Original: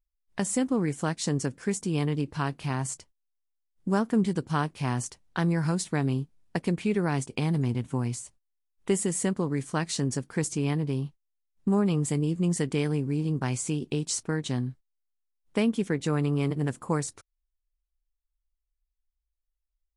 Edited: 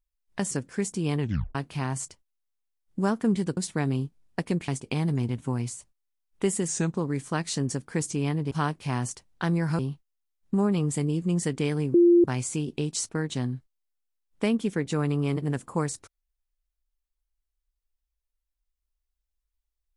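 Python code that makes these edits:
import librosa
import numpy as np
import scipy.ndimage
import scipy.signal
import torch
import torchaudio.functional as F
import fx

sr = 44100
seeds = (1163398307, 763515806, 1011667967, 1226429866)

y = fx.edit(x, sr, fx.cut(start_s=0.51, length_s=0.89),
    fx.tape_stop(start_s=2.09, length_s=0.35),
    fx.move(start_s=4.46, length_s=1.28, to_s=10.93),
    fx.cut(start_s=6.85, length_s=0.29),
    fx.speed_span(start_s=9.14, length_s=0.25, speed=0.86),
    fx.bleep(start_s=13.08, length_s=0.3, hz=346.0, db=-13.5), tone=tone)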